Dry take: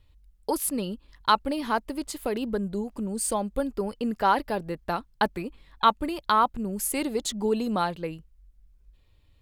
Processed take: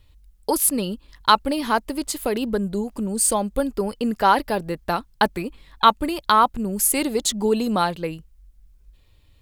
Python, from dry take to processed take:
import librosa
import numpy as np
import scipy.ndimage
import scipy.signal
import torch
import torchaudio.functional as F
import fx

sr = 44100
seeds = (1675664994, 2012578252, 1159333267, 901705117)

y = fx.high_shelf(x, sr, hz=4200.0, db=5.5)
y = y * librosa.db_to_amplitude(5.0)